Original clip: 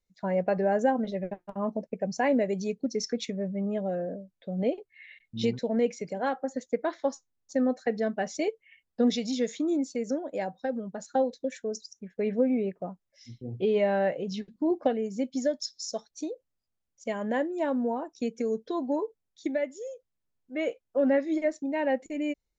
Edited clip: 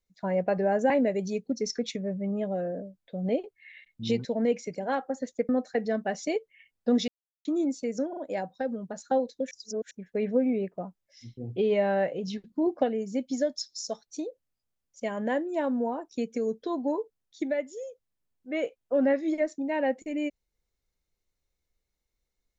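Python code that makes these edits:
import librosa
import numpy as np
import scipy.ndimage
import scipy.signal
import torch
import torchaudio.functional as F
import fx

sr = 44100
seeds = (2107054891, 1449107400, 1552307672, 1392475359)

y = fx.edit(x, sr, fx.cut(start_s=0.9, length_s=1.34),
    fx.cut(start_s=6.83, length_s=0.78),
    fx.silence(start_s=9.2, length_s=0.37),
    fx.stutter(start_s=10.21, slice_s=0.04, count=3),
    fx.reverse_span(start_s=11.55, length_s=0.4), tone=tone)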